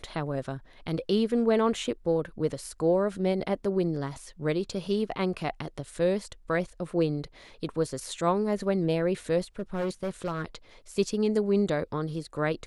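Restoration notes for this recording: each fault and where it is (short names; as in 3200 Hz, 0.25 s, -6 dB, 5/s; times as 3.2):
9.59–10.45 clipped -26 dBFS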